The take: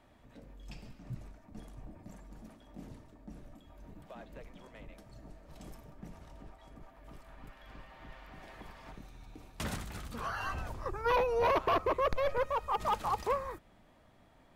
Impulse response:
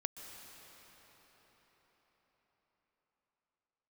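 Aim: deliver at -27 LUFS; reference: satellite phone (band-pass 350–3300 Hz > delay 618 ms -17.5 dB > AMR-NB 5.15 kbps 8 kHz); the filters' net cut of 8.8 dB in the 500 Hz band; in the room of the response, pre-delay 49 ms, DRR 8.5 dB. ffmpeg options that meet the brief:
-filter_complex "[0:a]equalizer=f=500:t=o:g=-9,asplit=2[s0][s1];[1:a]atrim=start_sample=2205,adelay=49[s2];[s1][s2]afir=irnorm=-1:irlink=0,volume=0.398[s3];[s0][s3]amix=inputs=2:normalize=0,highpass=350,lowpass=3300,aecho=1:1:618:0.133,volume=3.98" -ar 8000 -c:a libopencore_amrnb -b:a 5150

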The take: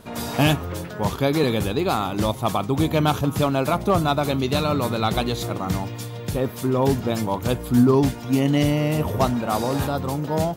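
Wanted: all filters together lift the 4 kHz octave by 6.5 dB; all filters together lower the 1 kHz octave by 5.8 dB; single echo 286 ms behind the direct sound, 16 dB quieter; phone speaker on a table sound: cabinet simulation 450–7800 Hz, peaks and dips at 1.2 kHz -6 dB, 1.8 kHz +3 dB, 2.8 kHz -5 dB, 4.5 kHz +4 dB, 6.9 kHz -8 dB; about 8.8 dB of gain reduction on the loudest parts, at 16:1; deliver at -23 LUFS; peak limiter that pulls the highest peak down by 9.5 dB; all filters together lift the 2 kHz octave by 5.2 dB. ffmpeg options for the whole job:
-af "equalizer=f=1000:t=o:g=-8.5,equalizer=f=2000:t=o:g=8,equalizer=f=4000:t=o:g=6,acompressor=threshold=0.1:ratio=16,alimiter=limit=0.0944:level=0:latency=1,highpass=f=450:w=0.5412,highpass=f=450:w=1.3066,equalizer=f=1200:t=q:w=4:g=-6,equalizer=f=1800:t=q:w=4:g=3,equalizer=f=2800:t=q:w=4:g=-5,equalizer=f=4500:t=q:w=4:g=4,equalizer=f=6900:t=q:w=4:g=-8,lowpass=f=7800:w=0.5412,lowpass=f=7800:w=1.3066,aecho=1:1:286:0.158,volume=3.35"

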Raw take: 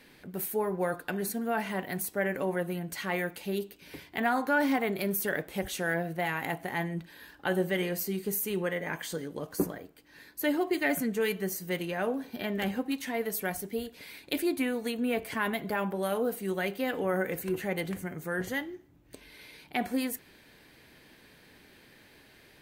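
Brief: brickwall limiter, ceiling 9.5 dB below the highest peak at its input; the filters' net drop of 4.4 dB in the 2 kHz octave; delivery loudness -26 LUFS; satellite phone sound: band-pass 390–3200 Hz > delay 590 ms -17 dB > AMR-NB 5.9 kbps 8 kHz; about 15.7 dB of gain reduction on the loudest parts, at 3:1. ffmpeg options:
-af "equalizer=f=2000:t=o:g=-5,acompressor=threshold=0.00501:ratio=3,alimiter=level_in=3.76:limit=0.0631:level=0:latency=1,volume=0.266,highpass=390,lowpass=3200,aecho=1:1:590:0.141,volume=18.8" -ar 8000 -c:a libopencore_amrnb -b:a 5900

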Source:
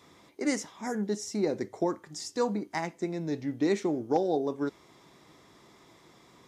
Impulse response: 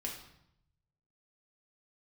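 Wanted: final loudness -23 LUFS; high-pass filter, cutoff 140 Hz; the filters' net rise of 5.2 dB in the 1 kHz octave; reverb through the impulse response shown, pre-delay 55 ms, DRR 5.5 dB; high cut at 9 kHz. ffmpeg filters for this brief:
-filter_complex "[0:a]highpass=140,lowpass=9000,equalizer=f=1000:t=o:g=7,asplit=2[s0][s1];[1:a]atrim=start_sample=2205,adelay=55[s2];[s1][s2]afir=irnorm=-1:irlink=0,volume=0.501[s3];[s0][s3]amix=inputs=2:normalize=0,volume=2"

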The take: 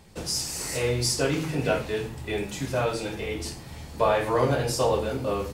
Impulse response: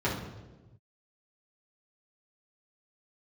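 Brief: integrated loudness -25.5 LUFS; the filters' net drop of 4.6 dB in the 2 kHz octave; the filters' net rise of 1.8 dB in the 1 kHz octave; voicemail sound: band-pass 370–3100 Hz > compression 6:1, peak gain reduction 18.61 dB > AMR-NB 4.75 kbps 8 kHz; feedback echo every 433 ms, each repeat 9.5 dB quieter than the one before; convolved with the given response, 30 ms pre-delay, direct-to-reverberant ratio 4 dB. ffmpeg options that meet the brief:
-filter_complex "[0:a]equalizer=f=1000:t=o:g=4,equalizer=f=2000:t=o:g=-7,aecho=1:1:433|866|1299|1732:0.335|0.111|0.0365|0.012,asplit=2[s0][s1];[1:a]atrim=start_sample=2205,adelay=30[s2];[s1][s2]afir=irnorm=-1:irlink=0,volume=0.178[s3];[s0][s3]amix=inputs=2:normalize=0,highpass=370,lowpass=3100,acompressor=threshold=0.0158:ratio=6,volume=6.68" -ar 8000 -c:a libopencore_amrnb -b:a 4750

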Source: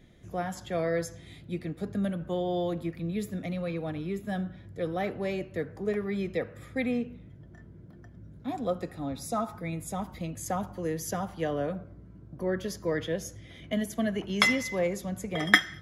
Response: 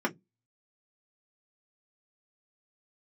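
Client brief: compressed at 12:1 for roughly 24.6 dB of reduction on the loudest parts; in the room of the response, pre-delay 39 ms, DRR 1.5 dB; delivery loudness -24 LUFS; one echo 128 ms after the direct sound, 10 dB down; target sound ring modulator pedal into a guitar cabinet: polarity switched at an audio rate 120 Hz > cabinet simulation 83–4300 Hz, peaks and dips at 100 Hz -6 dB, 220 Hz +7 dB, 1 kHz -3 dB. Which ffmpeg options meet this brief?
-filter_complex "[0:a]acompressor=threshold=0.00891:ratio=12,aecho=1:1:128:0.316,asplit=2[s0][s1];[1:a]atrim=start_sample=2205,adelay=39[s2];[s1][s2]afir=irnorm=-1:irlink=0,volume=0.299[s3];[s0][s3]amix=inputs=2:normalize=0,aeval=exprs='val(0)*sgn(sin(2*PI*120*n/s))':c=same,highpass=83,equalizer=f=100:t=q:w=4:g=-6,equalizer=f=220:t=q:w=4:g=7,equalizer=f=1000:t=q:w=4:g=-3,lowpass=f=4300:w=0.5412,lowpass=f=4300:w=1.3066,volume=7.5"

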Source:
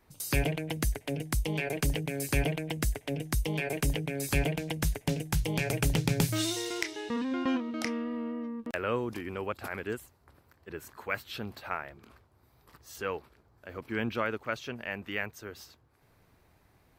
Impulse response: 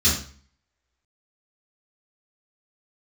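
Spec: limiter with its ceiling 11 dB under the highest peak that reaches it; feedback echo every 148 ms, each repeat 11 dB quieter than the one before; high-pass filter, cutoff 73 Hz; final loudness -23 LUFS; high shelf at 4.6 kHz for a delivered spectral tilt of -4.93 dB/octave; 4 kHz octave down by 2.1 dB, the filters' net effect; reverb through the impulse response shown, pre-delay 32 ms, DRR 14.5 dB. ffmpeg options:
-filter_complex "[0:a]highpass=73,equalizer=f=4000:t=o:g=-4.5,highshelf=f=4600:g=3,alimiter=limit=0.0668:level=0:latency=1,aecho=1:1:148|296|444:0.282|0.0789|0.0221,asplit=2[s0][s1];[1:a]atrim=start_sample=2205,adelay=32[s2];[s1][s2]afir=irnorm=-1:irlink=0,volume=0.0355[s3];[s0][s3]amix=inputs=2:normalize=0,volume=3.98"

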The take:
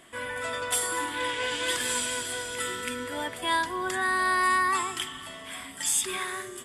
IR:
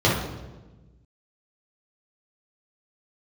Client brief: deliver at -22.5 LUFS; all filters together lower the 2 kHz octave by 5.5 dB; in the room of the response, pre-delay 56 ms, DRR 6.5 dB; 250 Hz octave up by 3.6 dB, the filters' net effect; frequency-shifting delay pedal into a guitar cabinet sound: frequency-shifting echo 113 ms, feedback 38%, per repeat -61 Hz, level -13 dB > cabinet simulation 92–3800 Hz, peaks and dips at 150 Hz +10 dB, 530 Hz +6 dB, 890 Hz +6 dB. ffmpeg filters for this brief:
-filter_complex "[0:a]equalizer=f=250:t=o:g=4,equalizer=f=2000:t=o:g=-7.5,asplit=2[s0][s1];[1:a]atrim=start_sample=2205,adelay=56[s2];[s1][s2]afir=irnorm=-1:irlink=0,volume=0.0531[s3];[s0][s3]amix=inputs=2:normalize=0,asplit=5[s4][s5][s6][s7][s8];[s5]adelay=113,afreqshift=-61,volume=0.224[s9];[s6]adelay=226,afreqshift=-122,volume=0.0851[s10];[s7]adelay=339,afreqshift=-183,volume=0.0324[s11];[s8]adelay=452,afreqshift=-244,volume=0.0123[s12];[s4][s9][s10][s11][s12]amix=inputs=5:normalize=0,highpass=92,equalizer=f=150:t=q:w=4:g=10,equalizer=f=530:t=q:w=4:g=6,equalizer=f=890:t=q:w=4:g=6,lowpass=f=3800:w=0.5412,lowpass=f=3800:w=1.3066,volume=2"

